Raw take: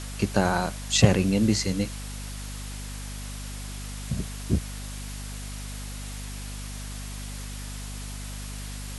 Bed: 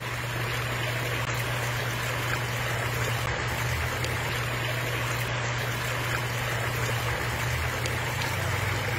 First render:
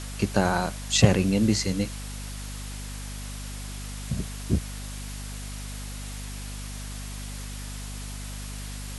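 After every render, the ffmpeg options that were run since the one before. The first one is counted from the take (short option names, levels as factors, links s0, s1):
-af anull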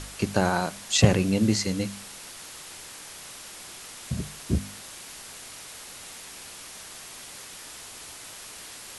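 -af "bandreject=f=50:t=h:w=4,bandreject=f=100:t=h:w=4,bandreject=f=150:t=h:w=4,bandreject=f=200:t=h:w=4,bandreject=f=250:t=h:w=4"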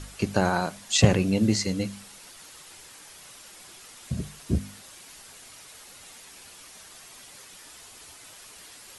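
-af "afftdn=nr=7:nf=-43"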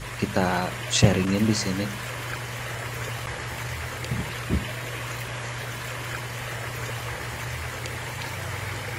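-filter_complex "[1:a]volume=0.631[s0];[0:a][s0]amix=inputs=2:normalize=0"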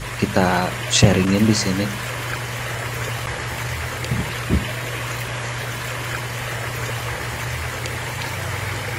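-af "volume=2,alimiter=limit=0.891:level=0:latency=1"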